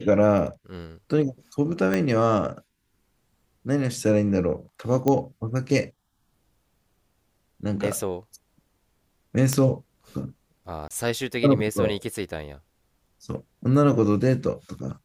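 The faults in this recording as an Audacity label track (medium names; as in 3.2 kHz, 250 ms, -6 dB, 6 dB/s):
1.940000	1.940000	pop -11 dBFS
5.080000	5.080000	pop -10 dBFS
9.530000	9.530000	pop -7 dBFS
10.880000	10.910000	dropout 26 ms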